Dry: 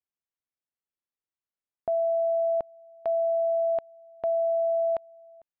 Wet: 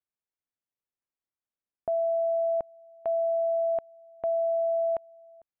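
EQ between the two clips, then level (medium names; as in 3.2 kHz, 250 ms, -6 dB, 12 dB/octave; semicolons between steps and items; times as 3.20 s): distance through air 370 m; 0.0 dB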